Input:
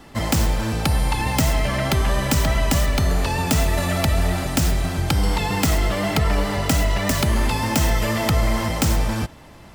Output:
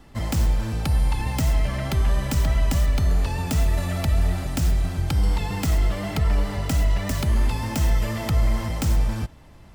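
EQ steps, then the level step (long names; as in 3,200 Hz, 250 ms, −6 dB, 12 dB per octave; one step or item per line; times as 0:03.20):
low-shelf EQ 120 Hz +11 dB
−8.5 dB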